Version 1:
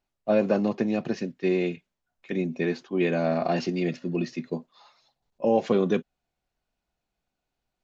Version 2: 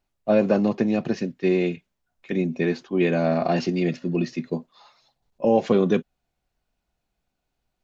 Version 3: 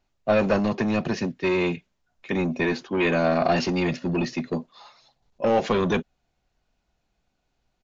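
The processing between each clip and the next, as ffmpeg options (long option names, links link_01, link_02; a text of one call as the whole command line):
ffmpeg -i in.wav -af "lowshelf=frequency=160:gain=4.5,volume=2.5dB" out.wav
ffmpeg -i in.wav -filter_complex "[0:a]acrossover=split=710[link_01][link_02];[link_01]asoftclip=type=tanh:threshold=-26dB[link_03];[link_03][link_02]amix=inputs=2:normalize=0,aresample=16000,aresample=44100,volume=4.5dB" out.wav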